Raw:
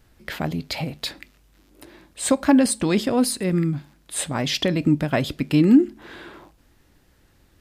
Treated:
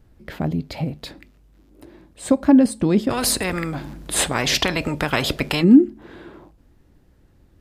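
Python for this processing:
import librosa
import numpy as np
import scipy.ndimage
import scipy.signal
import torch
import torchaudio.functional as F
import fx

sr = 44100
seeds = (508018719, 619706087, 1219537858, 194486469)

y = fx.tilt_shelf(x, sr, db=6.5, hz=870.0)
y = fx.spectral_comp(y, sr, ratio=4.0, at=(3.09, 5.62), fade=0.02)
y = F.gain(torch.from_numpy(y), -2.0).numpy()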